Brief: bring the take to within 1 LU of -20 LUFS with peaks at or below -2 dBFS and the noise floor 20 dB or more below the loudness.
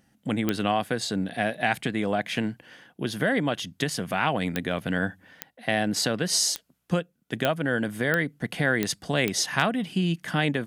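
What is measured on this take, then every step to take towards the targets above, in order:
clicks 8; loudness -27.0 LUFS; peak -5.0 dBFS; loudness target -20.0 LUFS
-> de-click; gain +7 dB; limiter -2 dBFS

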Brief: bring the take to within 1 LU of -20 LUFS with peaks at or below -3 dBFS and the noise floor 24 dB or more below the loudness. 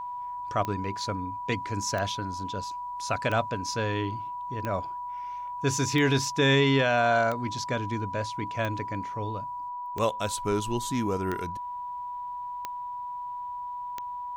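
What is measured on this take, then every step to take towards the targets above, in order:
clicks 11; steady tone 980 Hz; tone level -33 dBFS; loudness -29.5 LUFS; peak -13.0 dBFS; loudness target -20.0 LUFS
-> de-click; notch 980 Hz, Q 30; gain +9.5 dB

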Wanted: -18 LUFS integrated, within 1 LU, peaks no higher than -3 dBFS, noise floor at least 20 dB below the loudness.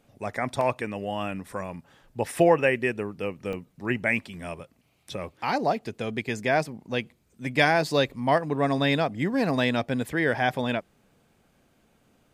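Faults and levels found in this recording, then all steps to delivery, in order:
dropouts 2; longest dropout 1.6 ms; loudness -26.5 LUFS; peak -6.5 dBFS; loudness target -18.0 LUFS
-> interpolate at 0.61/3.53, 1.6 ms; gain +8.5 dB; limiter -3 dBFS

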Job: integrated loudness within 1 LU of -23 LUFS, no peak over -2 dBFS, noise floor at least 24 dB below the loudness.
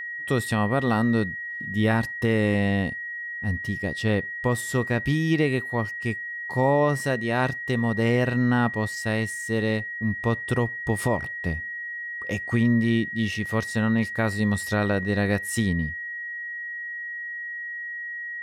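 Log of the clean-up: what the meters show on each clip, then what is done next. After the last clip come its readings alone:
steady tone 1900 Hz; tone level -31 dBFS; loudness -25.5 LUFS; peak -10.0 dBFS; loudness target -23.0 LUFS
-> notch 1900 Hz, Q 30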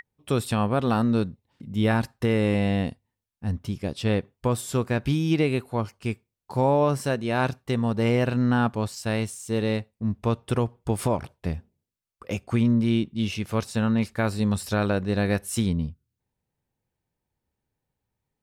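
steady tone none; loudness -25.5 LUFS; peak -10.5 dBFS; loudness target -23.0 LUFS
-> gain +2.5 dB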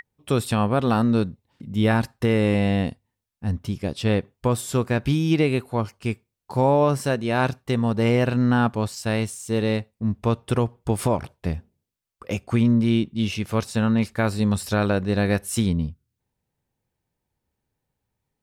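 loudness -23.0 LUFS; peak -8.0 dBFS; noise floor -82 dBFS

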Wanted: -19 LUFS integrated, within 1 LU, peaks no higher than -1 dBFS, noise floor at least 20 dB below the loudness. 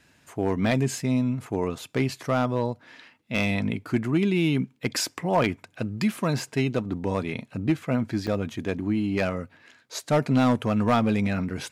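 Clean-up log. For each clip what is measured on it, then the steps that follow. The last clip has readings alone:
clipped 0.5%; flat tops at -14.5 dBFS; dropouts 1; longest dropout 4.1 ms; loudness -26.0 LUFS; peak -14.5 dBFS; loudness target -19.0 LUFS
-> clip repair -14.5 dBFS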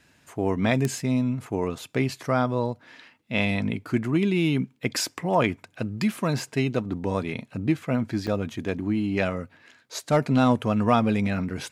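clipped 0.0%; dropouts 1; longest dropout 4.1 ms
-> interpolate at 8.27, 4.1 ms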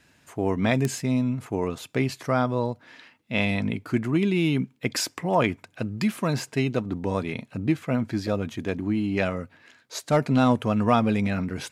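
dropouts 0; loudness -25.5 LUFS; peak -5.5 dBFS; loudness target -19.0 LUFS
-> gain +6.5 dB; limiter -1 dBFS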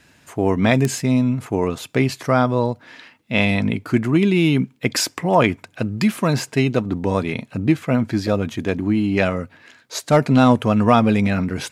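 loudness -19.5 LUFS; peak -1.0 dBFS; noise floor -55 dBFS

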